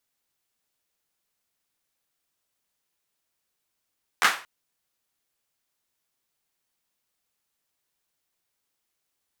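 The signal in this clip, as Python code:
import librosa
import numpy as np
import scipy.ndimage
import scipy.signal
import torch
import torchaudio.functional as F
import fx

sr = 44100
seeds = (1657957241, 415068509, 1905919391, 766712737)

y = fx.drum_clap(sr, seeds[0], length_s=0.23, bursts=3, spacing_ms=12, hz=1400.0, decay_s=0.35)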